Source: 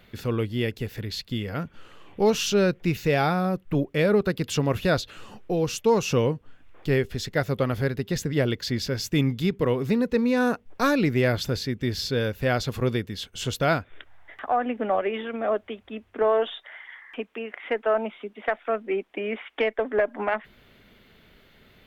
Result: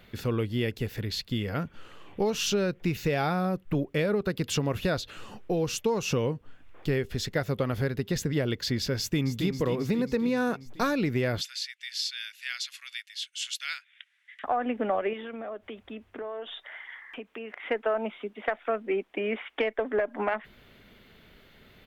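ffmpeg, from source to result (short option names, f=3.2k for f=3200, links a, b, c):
-filter_complex "[0:a]asplit=2[a][b];[b]afade=t=in:st=8.98:d=0.01,afade=t=out:st=9.48:d=0.01,aecho=0:1:270|540|810|1080|1350|1620|1890|2160|2430:0.354813|0.230629|0.149909|0.0974406|0.0633364|0.0411687|0.0267596|0.0173938|0.0113059[c];[a][c]amix=inputs=2:normalize=0,asettb=1/sr,asplit=3[d][e][f];[d]atrim=end=11.414[g];[e]atrim=start=11.41:end=14.44,asetpts=PTS-STARTPTS,afade=t=in:d=0.004:c=qsin,afade=t=out:st=3.026:d=0.004:c=qsin,asuperpass=centerf=5000:order=8:qfactor=0.55[h];[f]atrim=start=14.436[i];[g][h]acrossfade=d=0.004:c1=hsin:c2=qsin[j];[j][i]acrossfade=d=0.004:c1=qsin:c2=hsin,asettb=1/sr,asplit=3[k][l][m];[k]atrim=end=15.134[n];[l]atrim=start=15.13:end=17.61,asetpts=PTS-STARTPTS,afade=t=in:d=0.004:c=qsin,afade=t=out:st=2.476:d=0.004:c=qsin,acompressor=threshold=-36dB:ratio=4:attack=3.2:release=140:knee=1:detection=peak[o];[m]atrim=start=17.606[p];[n][o]acrossfade=d=0.004:c1=hsin:c2=qsin[q];[q][p]acrossfade=d=0.004:c1=qsin:c2=hsin,acompressor=threshold=-23dB:ratio=6"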